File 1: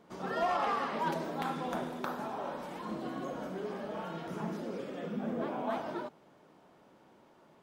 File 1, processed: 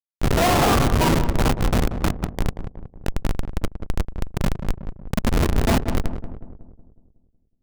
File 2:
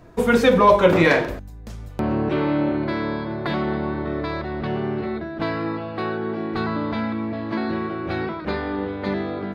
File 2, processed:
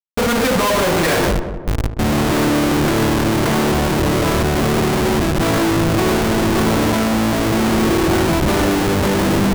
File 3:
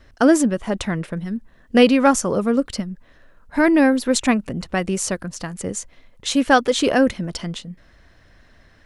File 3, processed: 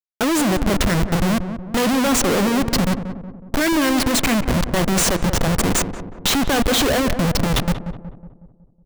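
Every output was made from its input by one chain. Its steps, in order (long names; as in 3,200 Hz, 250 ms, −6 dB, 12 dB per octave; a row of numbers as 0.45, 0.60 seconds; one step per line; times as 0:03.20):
comparator with hysteresis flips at −30 dBFS
feedback echo with a low-pass in the loop 184 ms, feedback 53%, low-pass 1,100 Hz, level −8.5 dB
normalise the peak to −9 dBFS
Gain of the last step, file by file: +20.0, +6.5, +3.0 decibels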